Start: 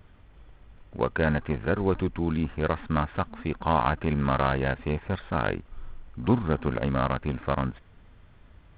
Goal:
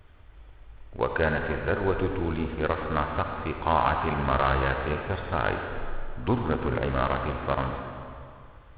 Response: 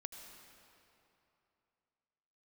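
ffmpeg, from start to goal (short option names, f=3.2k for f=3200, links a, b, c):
-filter_complex "[0:a]equalizer=f=190:w=1.4:g=-9[a];[1:a]atrim=start_sample=2205,asetrate=57330,aresample=44100[b];[a][b]afir=irnorm=-1:irlink=0,volume=8dB"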